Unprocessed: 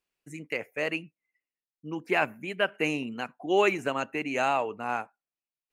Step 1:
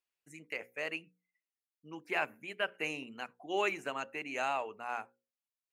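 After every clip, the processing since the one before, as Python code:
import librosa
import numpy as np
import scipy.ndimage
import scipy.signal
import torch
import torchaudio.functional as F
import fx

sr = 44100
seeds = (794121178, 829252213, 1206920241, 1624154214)

y = fx.low_shelf(x, sr, hz=400.0, db=-9.0)
y = fx.hum_notches(y, sr, base_hz=60, count=9)
y = y * librosa.db_to_amplitude(-6.0)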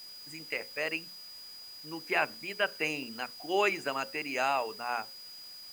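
y = fx.quant_dither(x, sr, seeds[0], bits=10, dither='triangular')
y = y + 10.0 ** (-50.0 / 20.0) * np.sin(2.0 * np.pi * 4900.0 * np.arange(len(y)) / sr)
y = y * librosa.db_to_amplitude(4.5)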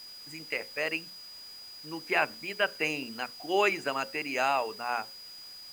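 y = scipy.signal.medfilt(x, 3)
y = y * librosa.db_to_amplitude(2.0)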